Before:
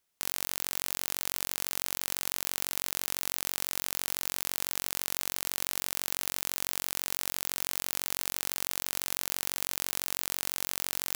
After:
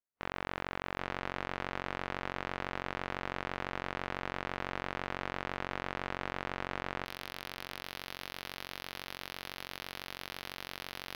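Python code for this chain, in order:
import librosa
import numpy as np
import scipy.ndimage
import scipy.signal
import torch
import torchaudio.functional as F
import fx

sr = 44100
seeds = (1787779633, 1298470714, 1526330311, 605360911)

y = fx.lowpass(x, sr, hz=fx.steps((0.0, 2000.0), (7.04, 5000.0)), slope=12)
y = 10.0 ** (-19.5 / 20.0) * (np.abs((y / 10.0 ** (-19.5 / 20.0) + 3.0) % 4.0 - 2.0) - 1.0)
y = y + 10.0 ** (-16.5 / 20.0) * np.pad(y, (int(791 * sr / 1000.0), 0))[:len(y)]
y = fx.spectral_expand(y, sr, expansion=1.5)
y = y * 10.0 ** (4.5 / 20.0)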